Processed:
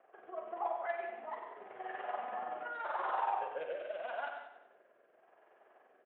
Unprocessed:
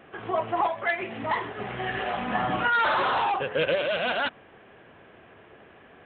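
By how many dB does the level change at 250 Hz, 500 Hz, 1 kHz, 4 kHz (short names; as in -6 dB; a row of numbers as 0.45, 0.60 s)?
-22.5, -12.5, -11.0, -25.0 dB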